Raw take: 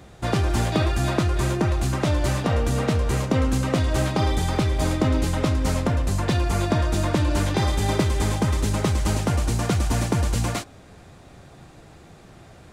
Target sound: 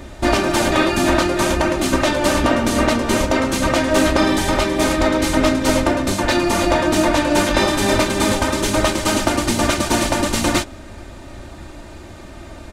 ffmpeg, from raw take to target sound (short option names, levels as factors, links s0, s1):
-filter_complex "[0:a]afftfilt=real='re*lt(hypot(re,im),0.398)':imag='im*lt(hypot(re,im),0.398)':win_size=1024:overlap=0.75,asplit=3[s0][s1][s2];[s1]asetrate=22050,aresample=44100,atempo=2,volume=0.708[s3];[s2]asetrate=37084,aresample=44100,atempo=1.18921,volume=0.178[s4];[s0][s3][s4]amix=inputs=3:normalize=0,aecho=1:1:3.3:0.62,volume=2.51"